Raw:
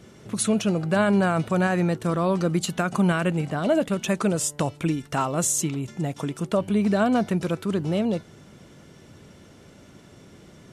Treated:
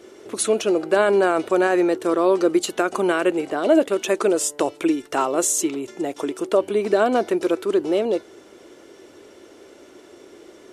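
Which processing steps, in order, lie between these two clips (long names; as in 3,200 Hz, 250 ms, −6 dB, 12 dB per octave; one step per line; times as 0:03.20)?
low shelf with overshoot 240 Hz −13.5 dB, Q 3
0:03.96–0:04.96: one half of a high-frequency compander encoder only
level +2.5 dB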